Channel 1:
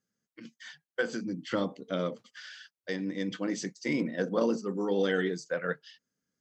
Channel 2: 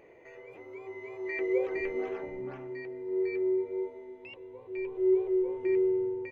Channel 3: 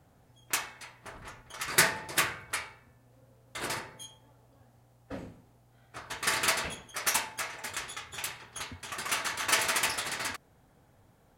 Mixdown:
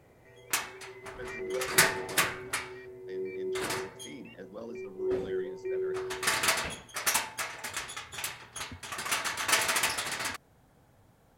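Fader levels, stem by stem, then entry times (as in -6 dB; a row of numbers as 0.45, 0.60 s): -16.0, -6.5, +0.5 dB; 0.20, 0.00, 0.00 s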